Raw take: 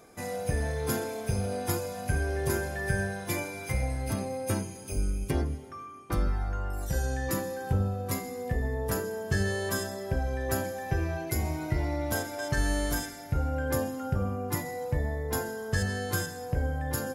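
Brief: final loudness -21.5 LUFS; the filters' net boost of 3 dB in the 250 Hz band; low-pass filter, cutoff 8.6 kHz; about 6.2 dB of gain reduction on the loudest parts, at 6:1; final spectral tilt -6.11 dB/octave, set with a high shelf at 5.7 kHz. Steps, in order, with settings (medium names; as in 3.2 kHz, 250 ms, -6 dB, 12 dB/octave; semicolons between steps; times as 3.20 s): low-pass 8.6 kHz; peaking EQ 250 Hz +4 dB; treble shelf 5.7 kHz -3.5 dB; compression 6:1, threshold -29 dBFS; trim +13.5 dB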